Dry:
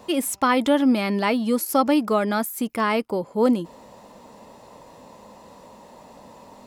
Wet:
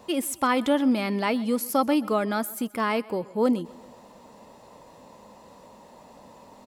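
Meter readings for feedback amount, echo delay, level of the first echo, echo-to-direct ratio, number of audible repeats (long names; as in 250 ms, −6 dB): 52%, 129 ms, −22.0 dB, −20.5 dB, 3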